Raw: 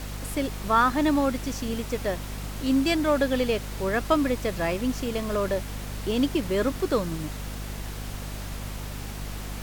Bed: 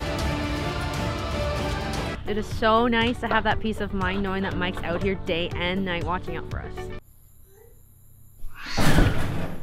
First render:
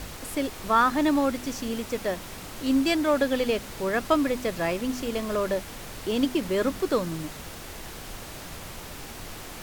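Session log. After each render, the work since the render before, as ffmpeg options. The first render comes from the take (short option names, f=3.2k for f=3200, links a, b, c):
-af "bandreject=f=50:t=h:w=4,bandreject=f=100:t=h:w=4,bandreject=f=150:t=h:w=4,bandreject=f=200:t=h:w=4,bandreject=f=250:t=h:w=4"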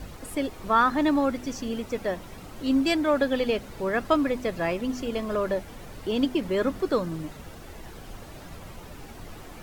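-af "afftdn=nr=10:nf=-41"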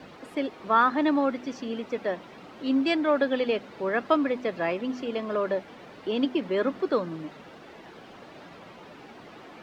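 -filter_complex "[0:a]highpass=f=99:p=1,acrossover=split=160 4700:gain=0.112 1 0.0794[a][b][c];[a][b][c]amix=inputs=3:normalize=0"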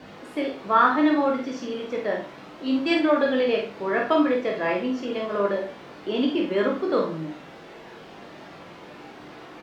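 -filter_complex "[0:a]asplit=2[a][b];[b]adelay=50,volume=-5dB[c];[a][c]amix=inputs=2:normalize=0,asplit=2[d][e];[e]aecho=0:1:20|44|72.8|107.4|148.8:0.631|0.398|0.251|0.158|0.1[f];[d][f]amix=inputs=2:normalize=0"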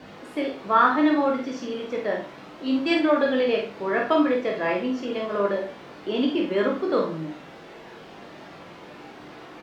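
-af anull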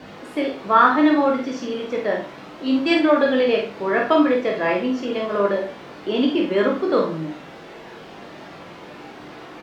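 -af "volume=4dB"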